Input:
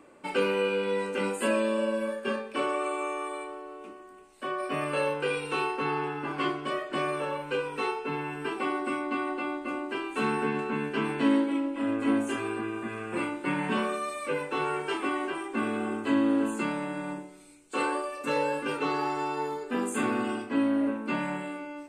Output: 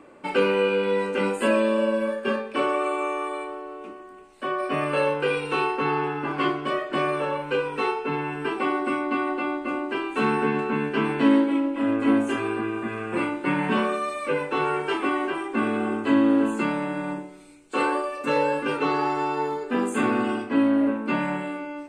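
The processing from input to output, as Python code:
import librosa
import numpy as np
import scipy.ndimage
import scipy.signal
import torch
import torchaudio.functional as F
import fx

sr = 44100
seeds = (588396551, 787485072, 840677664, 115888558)

y = fx.high_shelf(x, sr, hz=6200.0, db=-10.5)
y = y * librosa.db_to_amplitude(5.5)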